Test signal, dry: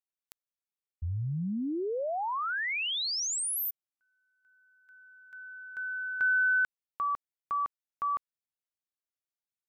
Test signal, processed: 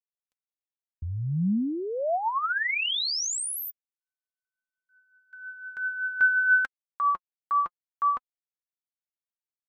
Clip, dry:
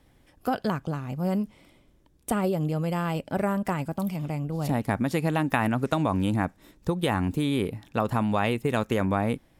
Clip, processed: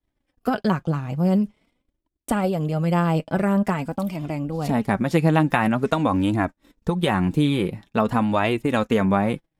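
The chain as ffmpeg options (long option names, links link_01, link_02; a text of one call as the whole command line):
ffmpeg -i in.wav -af "agate=range=-33dB:threshold=-49dB:ratio=3:release=35:detection=peak,highshelf=frequency=11000:gain=-10.5,flanger=delay=2.8:depth=3.7:regen=35:speed=0.47:shape=triangular,volume=8.5dB" out.wav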